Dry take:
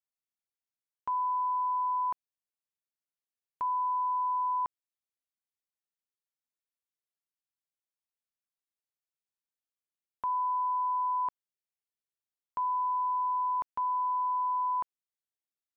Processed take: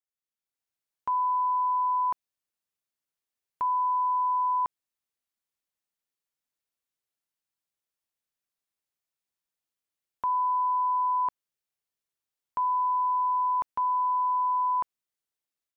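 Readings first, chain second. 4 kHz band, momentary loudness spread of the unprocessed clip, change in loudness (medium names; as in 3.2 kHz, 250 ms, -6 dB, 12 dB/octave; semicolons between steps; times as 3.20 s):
no reading, 6 LU, +4.0 dB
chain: level rider gain up to 9 dB; trim -5 dB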